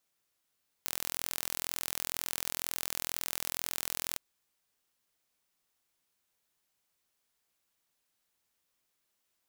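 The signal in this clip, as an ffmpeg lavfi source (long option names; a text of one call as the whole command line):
ffmpeg -f lavfi -i "aevalsrc='0.447*eq(mod(n,1048),0)':duration=3.31:sample_rate=44100" out.wav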